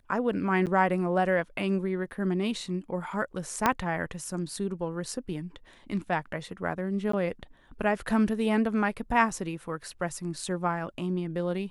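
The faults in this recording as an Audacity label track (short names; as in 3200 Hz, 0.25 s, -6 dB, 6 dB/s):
0.660000	0.670000	gap 8.4 ms
3.660000	3.660000	pop -8 dBFS
7.120000	7.130000	gap 14 ms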